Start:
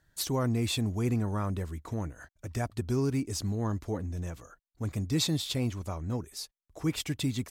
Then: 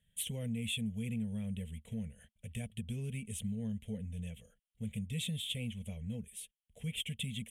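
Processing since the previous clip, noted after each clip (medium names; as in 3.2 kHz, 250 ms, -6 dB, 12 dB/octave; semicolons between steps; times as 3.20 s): FFT filter 130 Hz 0 dB, 220 Hz +9 dB, 320 Hz -29 dB, 460 Hz 0 dB, 1.2 kHz -27 dB, 2.1 kHz +2 dB, 3.2 kHz +13 dB, 4.7 kHz -24 dB, 9.5 kHz +6 dB, 15 kHz -11 dB; compression 2:1, threshold -30 dBFS, peak gain reduction 5 dB; treble shelf 6.7 kHz +5.5 dB; trim -6.5 dB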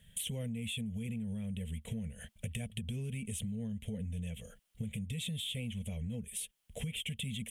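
peak limiter -34.5 dBFS, peak gain reduction 10 dB; compression 6:1, threshold -51 dBFS, peak gain reduction 12.5 dB; trim +14.5 dB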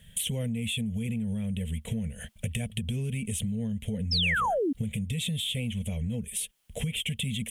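painted sound fall, 4.11–4.73 s, 250–5500 Hz -34 dBFS; trim +7.5 dB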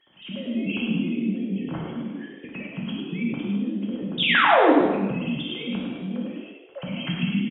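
formants replaced by sine waves; on a send: frequency-shifting echo 104 ms, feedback 51%, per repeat +59 Hz, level -7 dB; on the sum: gated-style reverb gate 350 ms falling, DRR -3 dB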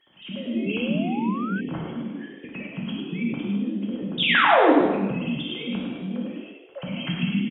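painted sound rise, 0.53–1.61 s, 320–1600 Hz -34 dBFS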